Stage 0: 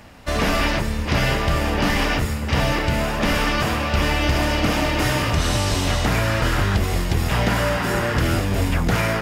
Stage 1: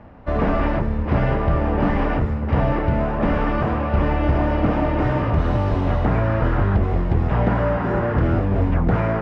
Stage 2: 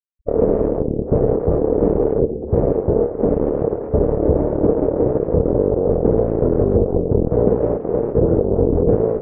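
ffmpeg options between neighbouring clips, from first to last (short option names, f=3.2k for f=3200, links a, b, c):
-af "lowpass=1.1k,volume=2dB"
-af "afftfilt=real='re*gte(hypot(re,im),0.0794)':imag='im*gte(hypot(re,im),0.0794)':win_size=1024:overlap=0.75,aeval=exprs='0.422*(cos(1*acos(clip(val(0)/0.422,-1,1)))-cos(1*PI/2))+0.119*(cos(7*acos(clip(val(0)/0.422,-1,1)))-cos(7*PI/2))':c=same,lowpass=f=460:t=q:w=4.9,volume=-1.5dB"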